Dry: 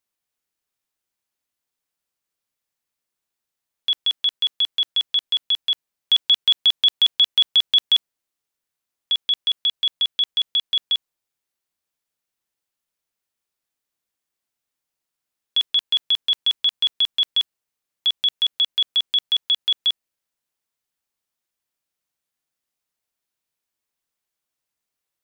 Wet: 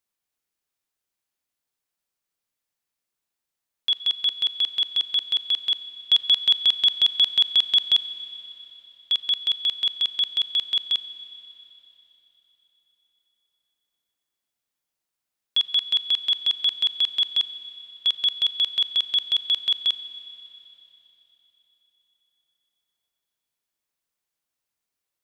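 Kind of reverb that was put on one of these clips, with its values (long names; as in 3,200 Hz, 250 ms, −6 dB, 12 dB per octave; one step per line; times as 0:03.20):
four-comb reverb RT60 3.8 s, combs from 27 ms, DRR 13 dB
level −1.5 dB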